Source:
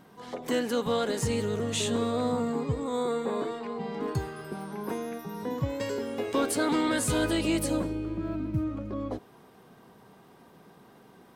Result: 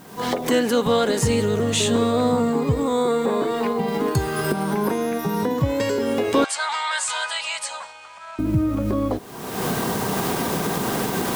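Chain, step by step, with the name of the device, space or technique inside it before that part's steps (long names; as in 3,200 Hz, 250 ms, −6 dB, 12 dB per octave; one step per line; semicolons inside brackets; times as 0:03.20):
cheap recorder with automatic gain (white noise bed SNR 32 dB; camcorder AGC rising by 43 dB per second)
0:03.88–0:04.53: high-shelf EQ 4,600 Hz +5.5 dB
0:06.44–0:08.39: elliptic band-pass filter 850–8,200 Hz, stop band 40 dB
level +8.5 dB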